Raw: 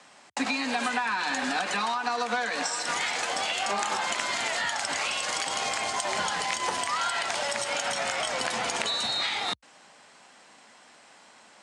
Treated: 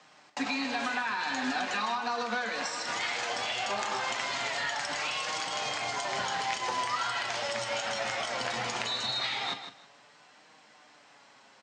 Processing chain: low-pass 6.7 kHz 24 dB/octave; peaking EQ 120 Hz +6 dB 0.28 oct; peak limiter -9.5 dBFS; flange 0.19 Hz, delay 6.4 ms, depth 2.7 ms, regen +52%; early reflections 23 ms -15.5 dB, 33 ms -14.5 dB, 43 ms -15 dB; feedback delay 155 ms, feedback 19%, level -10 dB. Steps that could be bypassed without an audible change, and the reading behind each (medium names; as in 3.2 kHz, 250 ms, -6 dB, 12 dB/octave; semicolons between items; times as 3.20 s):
peak limiter -9.5 dBFS: peak at its input -12.0 dBFS